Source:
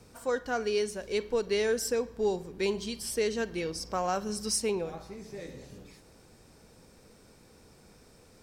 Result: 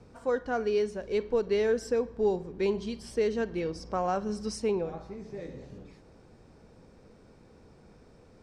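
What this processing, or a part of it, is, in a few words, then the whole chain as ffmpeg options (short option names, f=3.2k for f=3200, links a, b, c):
through cloth: -af "lowpass=7k,highshelf=f=2k:g=-11.5,volume=2.5dB"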